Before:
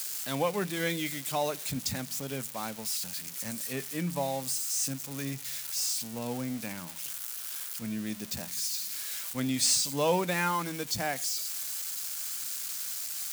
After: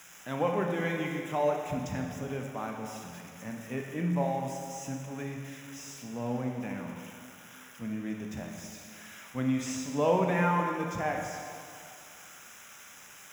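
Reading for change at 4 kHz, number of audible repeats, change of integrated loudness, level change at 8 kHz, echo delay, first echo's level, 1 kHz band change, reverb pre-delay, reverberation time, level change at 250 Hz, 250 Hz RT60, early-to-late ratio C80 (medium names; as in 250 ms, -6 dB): -13.5 dB, no echo, -1.5 dB, -14.0 dB, no echo, no echo, +2.0 dB, 18 ms, 2.4 s, +2.5 dB, 2.2 s, 4.0 dB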